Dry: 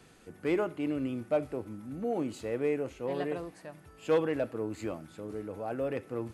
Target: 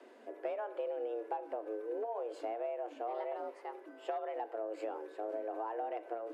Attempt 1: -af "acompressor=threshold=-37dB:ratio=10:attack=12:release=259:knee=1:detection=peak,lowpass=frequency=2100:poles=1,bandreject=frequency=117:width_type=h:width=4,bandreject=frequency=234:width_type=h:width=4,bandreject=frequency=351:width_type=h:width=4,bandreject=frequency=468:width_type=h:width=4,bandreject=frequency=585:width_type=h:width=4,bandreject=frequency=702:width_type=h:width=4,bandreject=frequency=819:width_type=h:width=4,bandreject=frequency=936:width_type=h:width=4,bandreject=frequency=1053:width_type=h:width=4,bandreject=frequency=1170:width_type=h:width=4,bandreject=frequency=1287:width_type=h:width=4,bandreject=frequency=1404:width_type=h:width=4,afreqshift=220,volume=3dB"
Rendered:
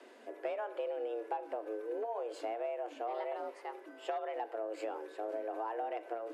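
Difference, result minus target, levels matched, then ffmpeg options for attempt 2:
2,000 Hz band +3.0 dB
-af "acompressor=threshold=-37dB:ratio=10:attack=12:release=259:knee=1:detection=peak,lowpass=frequency=990:poles=1,bandreject=frequency=117:width_type=h:width=4,bandreject=frequency=234:width_type=h:width=4,bandreject=frequency=351:width_type=h:width=4,bandreject=frequency=468:width_type=h:width=4,bandreject=frequency=585:width_type=h:width=4,bandreject=frequency=702:width_type=h:width=4,bandreject=frequency=819:width_type=h:width=4,bandreject=frequency=936:width_type=h:width=4,bandreject=frequency=1053:width_type=h:width=4,bandreject=frequency=1170:width_type=h:width=4,bandreject=frequency=1287:width_type=h:width=4,bandreject=frequency=1404:width_type=h:width=4,afreqshift=220,volume=3dB"

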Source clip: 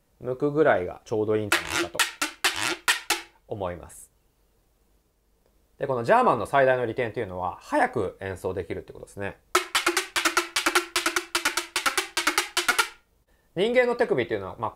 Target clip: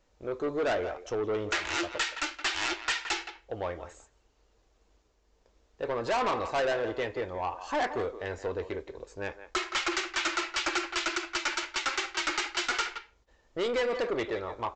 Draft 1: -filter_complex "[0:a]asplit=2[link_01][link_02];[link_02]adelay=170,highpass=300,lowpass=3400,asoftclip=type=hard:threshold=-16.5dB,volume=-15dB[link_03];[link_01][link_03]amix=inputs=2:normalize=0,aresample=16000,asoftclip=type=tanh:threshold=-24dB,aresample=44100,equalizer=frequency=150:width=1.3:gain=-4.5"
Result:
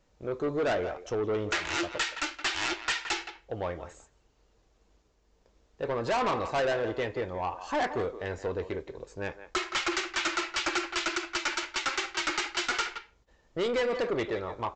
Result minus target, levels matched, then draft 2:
125 Hz band +4.0 dB
-filter_complex "[0:a]asplit=2[link_01][link_02];[link_02]adelay=170,highpass=300,lowpass=3400,asoftclip=type=hard:threshold=-16.5dB,volume=-15dB[link_03];[link_01][link_03]amix=inputs=2:normalize=0,aresample=16000,asoftclip=type=tanh:threshold=-24dB,aresample=44100,equalizer=frequency=150:width=1.3:gain=-11.5"

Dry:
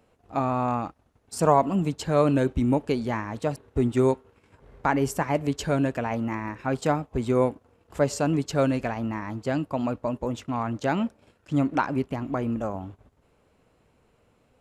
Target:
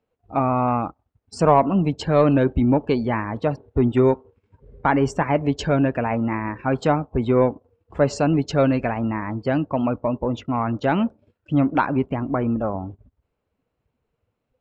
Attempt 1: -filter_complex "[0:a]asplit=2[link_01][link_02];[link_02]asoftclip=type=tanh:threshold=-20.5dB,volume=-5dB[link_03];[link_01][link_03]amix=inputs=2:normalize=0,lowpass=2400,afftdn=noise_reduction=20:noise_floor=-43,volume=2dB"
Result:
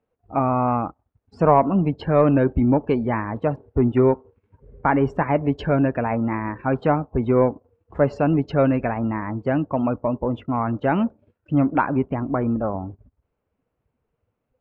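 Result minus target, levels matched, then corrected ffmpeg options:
4,000 Hz band −8.0 dB
-filter_complex "[0:a]asplit=2[link_01][link_02];[link_02]asoftclip=type=tanh:threshold=-20.5dB,volume=-5dB[link_03];[link_01][link_03]amix=inputs=2:normalize=0,lowpass=5300,afftdn=noise_reduction=20:noise_floor=-43,volume=2dB"

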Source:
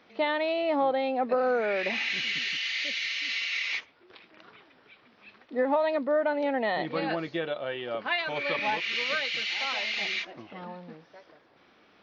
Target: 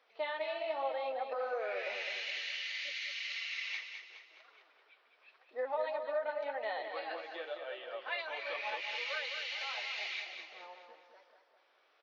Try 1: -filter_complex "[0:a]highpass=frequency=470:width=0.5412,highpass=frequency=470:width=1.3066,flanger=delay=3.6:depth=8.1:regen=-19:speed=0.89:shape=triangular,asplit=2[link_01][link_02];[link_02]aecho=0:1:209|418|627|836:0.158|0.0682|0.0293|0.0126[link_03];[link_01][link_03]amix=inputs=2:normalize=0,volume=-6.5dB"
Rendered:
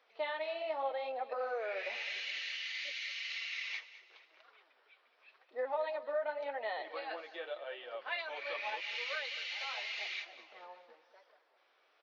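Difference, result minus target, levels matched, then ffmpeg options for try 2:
echo-to-direct −9 dB
-filter_complex "[0:a]highpass=frequency=470:width=0.5412,highpass=frequency=470:width=1.3066,flanger=delay=3.6:depth=8.1:regen=-19:speed=0.89:shape=triangular,asplit=2[link_01][link_02];[link_02]aecho=0:1:209|418|627|836|1045:0.447|0.192|0.0826|0.0355|0.0153[link_03];[link_01][link_03]amix=inputs=2:normalize=0,volume=-6.5dB"

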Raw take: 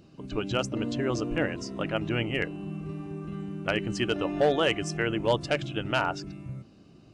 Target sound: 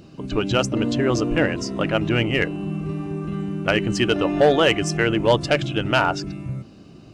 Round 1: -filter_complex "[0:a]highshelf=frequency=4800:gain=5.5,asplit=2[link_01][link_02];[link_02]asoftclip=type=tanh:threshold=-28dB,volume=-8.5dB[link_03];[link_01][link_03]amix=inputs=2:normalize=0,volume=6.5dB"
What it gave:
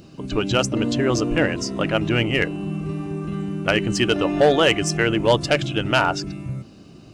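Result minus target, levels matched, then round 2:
8,000 Hz band +3.0 dB
-filter_complex "[0:a]asplit=2[link_01][link_02];[link_02]asoftclip=type=tanh:threshold=-28dB,volume=-8.5dB[link_03];[link_01][link_03]amix=inputs=2:normalize=0,volume=6.5dB"

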